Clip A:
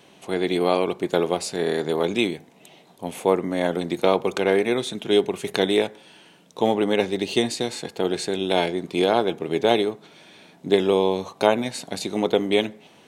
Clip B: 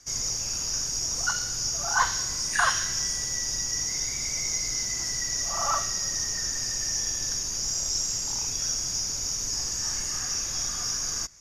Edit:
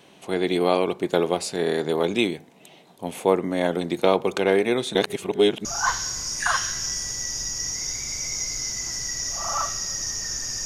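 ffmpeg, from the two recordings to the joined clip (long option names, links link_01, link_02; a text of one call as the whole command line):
ffmpeg -i cue0.wav -i cue1.wav -filter_complex "[0:a]apad=whole_dur=10.65,atrim=end=10.65,asplit=2[link_01][link_02];[link_01]atrim=end=4.952[link_03];[link_02]atrim=start=4.948:end=5.652,asetpts=PTS-STARTPTS,areverse[link_04];[1:a]atrim=start=1.778:end=6.78[link_05];[link_03][link_04]acrossfade=duration=0.004:curve1=hsin:curve2=hsin[link_06];[link_06][link_05]acrossfade=duration=0.004:curve1=hsin:curve2=hsin" out.wav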